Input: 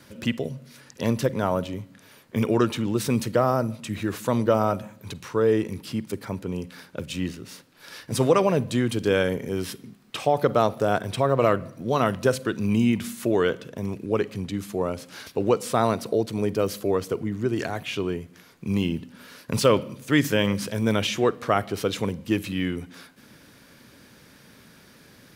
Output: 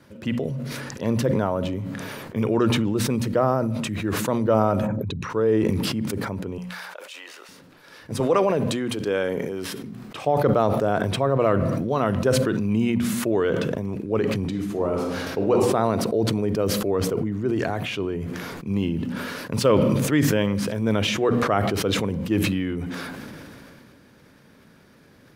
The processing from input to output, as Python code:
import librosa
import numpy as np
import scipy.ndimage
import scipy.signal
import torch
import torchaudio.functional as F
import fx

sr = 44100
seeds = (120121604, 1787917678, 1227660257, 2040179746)

y = fx.envelope_sharpen(x, sr, power=2.0, at=(4.86, 5.29), fade=0.02)
y = fx.highpass(y, sr, hz=680.0, slope=24, at=(6.58, 7.49))
y = fx.highpass(y, sr, hz=340.0, slope=6, at=(8.2, 9.82))
y = fx.reverb_throw(y, sr, start_s=14.38, length_s=1.14, rt60_s=0.99, drr_db=1.5)
y = fx.high_shelf(y, sr, hz=2200.0, db=-10.0)
y = fx.hum_notches(y, sr, base_hz=60, count=4)
y = fx.sustainer(y, sr, db_per_s=20.0)